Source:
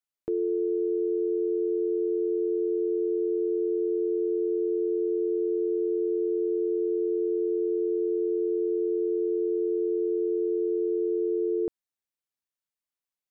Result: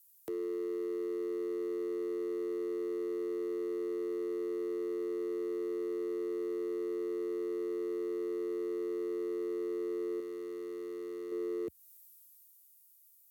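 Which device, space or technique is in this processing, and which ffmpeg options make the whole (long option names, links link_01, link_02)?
FM broadcast chain: -filter_complex "[0:a]highpass=frequency=76:width=0.5412,highpass=frequency=76:width=1.3066,dynaudnorm=framelen=120:gausssize=21:maxgain=6.5dB,acrossover=split=260|520[link_01][link_02][link_03];[link_01]acompressor=threshold=-38dB:ratio=4[link_04];[link_02]acompressor=threshold=-21dB:ratio=4[link_05];[link_03]acompressor=threshold=-43dB:ratio=4[link_06];[link_04][link_05][link_06]amix=inputs=3:normalize=0,aemphasis=mode=production:type=75fm,alimiter=level_in=5.5dB:limit=-24dB:level=0:latency=1:release=25,volume=-5.5dB,asoftclip=type=hard:threshold=-31dB,lowpass=frequency=15000:width=0.5412,lowpass=frequency=15000:width=1.3066,aemphasis=mode=production:type=75fm,asettb=1/sr,asplit=3[link_07][link_08][link_09];[link_07]atrim=end=10.204[link_10];[link_08]atrim=start=10.2:end=11.32,asetpts=PTS-STARTPTS,afade=type=in:duration=0.004:curve=qsin,afade=type=out:start_time=1.116:duration=0.004:curve=qsin,equalizer=frequency=460:width=0.49:gain=-5.5[link_11];[link_09]atrim=start=11.316[link_12];[link_10][link_11]acrossfade=duration=0.004:curve1=hsin:curve2=qsin[link_13];[link_13][link_12]acrossfade=duration=0.004:curve1=qsin:curve2=hsin"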